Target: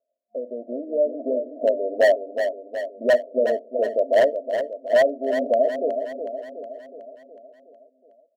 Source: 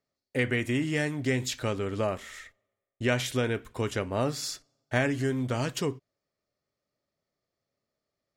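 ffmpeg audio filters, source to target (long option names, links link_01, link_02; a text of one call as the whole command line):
ffmpeg -i in.wav -filter_complex "[0:a]lowshelf=frequency=470:width_type=q:width=3:gain=-10.5,asplit=2[link_01][link_02];[link_02]acompressor=threshold=-38dB:ratio=10,volume=0.5dB[link_03];[link_01][link_03]amix=inputs=2:normalize=0,afftfilt=real='re*between(b*sr/4096,220,710)':imag='im*between(b*sr/4096,220,710)':win_size=4096:overlap=0.75,dynaudnorm=framelen=490:gausssize=3:maxgain=10.5dB,aeval=exprs='0.299*(abs(mod(val(0)/0.299+3,4)-2)-1)':channel_layout=same,aecho=1:1:368|736|1104|1472|1840|2208|2576:0.398|0.223|0.125|0.0699|0.0392|0.0219|0.0123" out.wav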